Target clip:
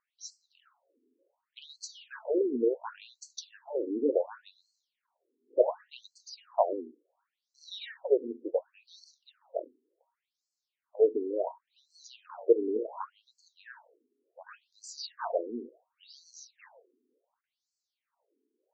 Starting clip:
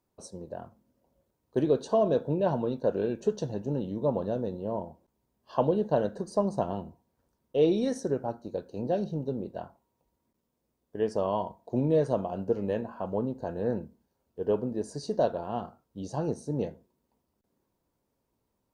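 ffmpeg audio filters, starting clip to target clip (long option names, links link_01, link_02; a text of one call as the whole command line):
ffmpeg -i in.wav -af "aeval=exprs='0.282*(cos(1*acos(clip(val(0)/0.282,-1,1)))-cos(1*PI/2))+0.00631*(cos(4*acos(clip(val(0)/0.282,-1,1)))-cos(4*PI/2))':channel_layout=same,afftfilt=real='re*between(b*sr/1024,310*pow(5900/310,0.5+0.5*sin(2*PI*0.69*pts/sr))/1.41,310*pow(5900/310,0.5+0.5*sin(2*PI*0.69*pts/sr))*1.41)':imag='im*between(b*sr/1024,310*pow(5900/310,0.5+0.5*sin(2*PI*0.69*pts/sr))/1.41,310*pow(5900/310,0.5+0.5*sin(2*PI*0.69*pts/sr))*1.41)':win_size=1024:overlap=0.75,volume=6dB" out.wav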